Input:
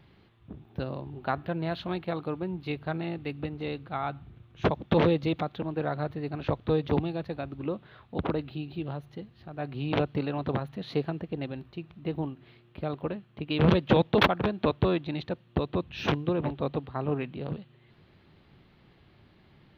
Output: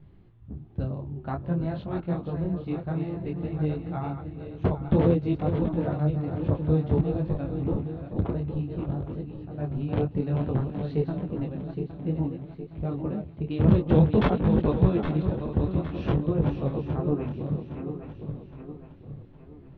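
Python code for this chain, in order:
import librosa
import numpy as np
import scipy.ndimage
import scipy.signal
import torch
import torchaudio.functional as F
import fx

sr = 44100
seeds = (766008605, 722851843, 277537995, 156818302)

y = fx.reverse_delay_fb(x, sr, ms=407, feedback_pct=65, wet_db=-7)
y = fx.tilt_eq(y, sr, slope=-4.0)
y = fx.detune_double(y, sr, cents=19)
y = y * librosa.db_to_amplitude(-2.0)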